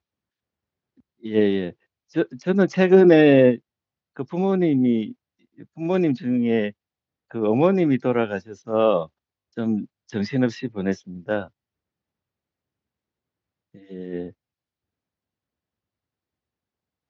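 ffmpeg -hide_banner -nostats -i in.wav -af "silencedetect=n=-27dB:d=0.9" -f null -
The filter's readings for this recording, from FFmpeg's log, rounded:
silence_start: 0.00
silence_end: 1.26 | silence_duration: 1.26
silence_start: 11.43
silence_end: 13.96 | silence_duration: 2.53
silence_start: 14.27
silence_end: 17.09 | silence_duration: 2.83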